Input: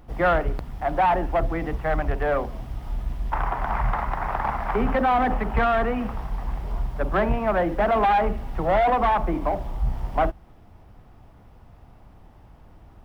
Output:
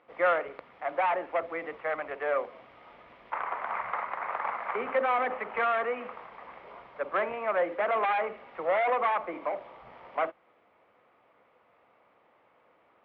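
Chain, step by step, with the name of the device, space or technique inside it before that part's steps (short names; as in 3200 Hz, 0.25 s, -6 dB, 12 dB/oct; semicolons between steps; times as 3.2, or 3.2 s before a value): phone earpiece (speaker cabinet 490–3500 Hz, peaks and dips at 510 Hz +8 dB, 790 Hz -4 dB, 1200 Hz +5 dB, 2200 Hz +8 dB); gain -6.5 dB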